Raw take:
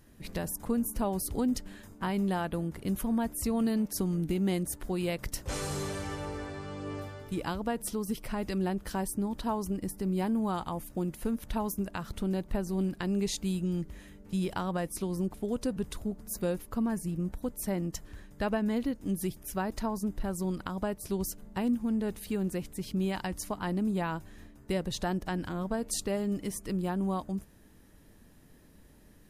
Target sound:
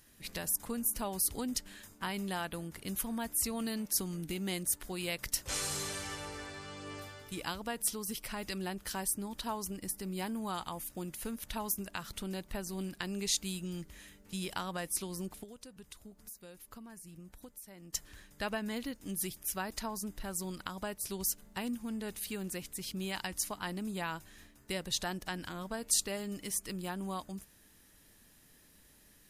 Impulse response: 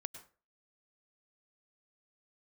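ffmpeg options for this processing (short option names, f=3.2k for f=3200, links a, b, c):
-filter_complex "[0:a]tiltshelf=f=1.3k:g=-7.5,asettb=1/sr,asplit=3[a][b][c];[a]atrim=end=15.434[d];[b]atrim=start=15.43:end=17.93,asetpts=PTS-STARTPTS,afade=t=in:d=0.004:c=qsin,afade=t=out:st=2.496:d=0.004:c=qsin,acompressor=threshold=-45dB:ratio=12[e];[c]atrim=start=17.926[f];[d][e]acrossfade=d=0.004:c1=hsin:c2=qsin[g];[g][f]acrossfade=d=0.004:c1=qsin:c2=hsin,volume=-2dB"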